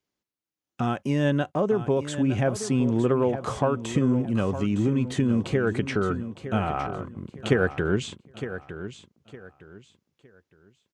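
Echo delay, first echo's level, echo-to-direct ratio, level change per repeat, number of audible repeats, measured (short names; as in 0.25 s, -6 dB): 0.911 s, -11.5 dB, -11.0 dB, -11.0 dB, 3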